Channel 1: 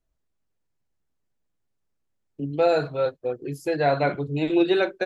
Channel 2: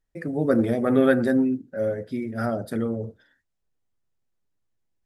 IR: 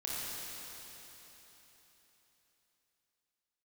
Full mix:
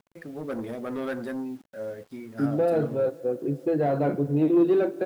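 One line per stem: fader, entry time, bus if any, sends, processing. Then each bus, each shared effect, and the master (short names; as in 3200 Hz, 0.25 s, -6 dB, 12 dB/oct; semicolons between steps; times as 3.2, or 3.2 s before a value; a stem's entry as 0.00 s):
+2.0 dB, 0.00 s, send -20.5 dB, sample leveller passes 2; upward compressor, threshold -35 dBFS; band-pass 220 Hz, Q 1.2
-15.0 dB, 0.00 s, no send, sample leveller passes 2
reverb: on, RT60 3.9 s, pre-delay 24 ms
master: bit-crush 10-bit; low shelf 220 Hz -7 dB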